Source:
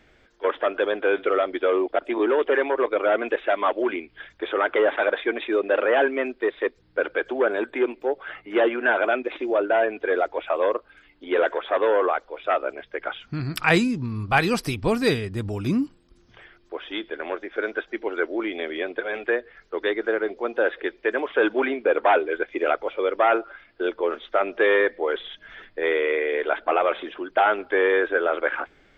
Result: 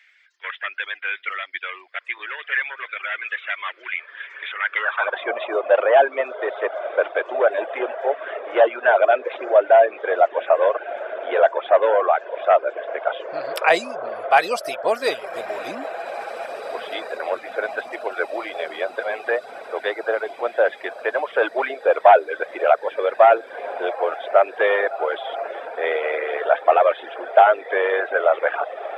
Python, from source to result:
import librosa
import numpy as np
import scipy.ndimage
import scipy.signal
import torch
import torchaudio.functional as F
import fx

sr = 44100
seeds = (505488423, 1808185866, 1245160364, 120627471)

y = fx.echo_diffused(x, sr, ms=1929, feedback_pct=70, wet_db=-12)
y = fx.filter_sweep_highpass(y, sr, from_hz=2000.0, to_hz=640.0, start_s=4.62, end_s=5.32, q=3.1)
y = fx.dereverb_blind(y, sr, rt60_s=0.59)